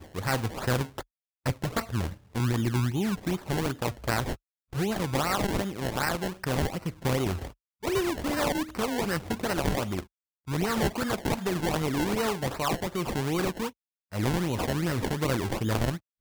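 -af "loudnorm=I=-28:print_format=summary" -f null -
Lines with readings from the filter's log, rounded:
Input Integrated:    -29.6 LUFS
Input True Peak:     -11.2 dBTP
Input LRA:             0.5 LU
Input Threshold:     -39.7 LUFS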